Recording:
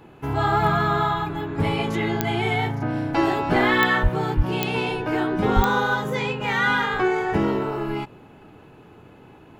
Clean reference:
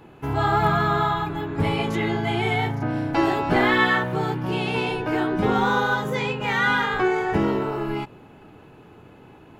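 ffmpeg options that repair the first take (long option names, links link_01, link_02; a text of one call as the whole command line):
ffmpeg -i in.wav -filter_complex "[0:a]adeclick=threshold=4,asplit=3[link_01][link_02][link_03];[link_01]afade=type=out:start_time=4.02:duration=0.02[link_04];[link_02]highpass=frequency=140:width=0.5412,highpass=frequency=140:width=1.3066,afade=type=in:start_time=4.02:duration=0.02,afade=type=out:start_time=4.14:duration=0.02[link_05];[link_03]afade=type=in:start_time=4.14:duration=0.02[link_06];[link_04][link_05][link_06]amix=inputs=3:normalize=0,asplit=3[link_07][link_08][link_09];[link_07]afade=type=out:start_time=4.36:duration=0.02[link_10];[link_08]highpass=frequency=140:width=0.5412,highpass=frequency=140:width=1.3066,afade=type=in:start_time=4.36:duration=0.02,afade=type=out:start_time=4.48:duration=0.02[link_11];[link_09]afade=type=in:start_time=4.48:duration=0.02[link_12];[link_10][link_11][link_12]amix=inputs=3:normalize=0,asplit=3[link_13][link_14][link_15];[link_13]afade=type=out:start_time=5.55:duration=0.02[link_16];[link_14]highpass=frequency=140:width=0.5412,highpass=frequency=140:width=1.3066,afade=type=in:start_time=5.55:duration=0.02,afade=type=out:start_time=5.67:duration=0.02[link_17];[link_15]afade=type=in:start_time=5.67:duration=0.02[link_18];[link_16][link_17][link_18]amix=inputs=3:normalize=0" out.wav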